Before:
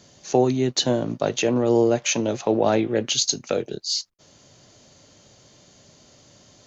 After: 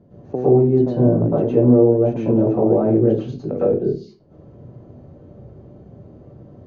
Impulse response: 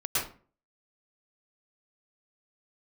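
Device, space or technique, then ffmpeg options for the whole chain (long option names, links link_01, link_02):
television next door: -filter_complex "[0:a]acompressor=threshold=-24dB:ratio=5,lowpass=460[link_01];[1:a]atrim=start_sample=2205[link_02];[link_01][link_02]afir=irnorm=-1:irlink=0,volume=6.5dB"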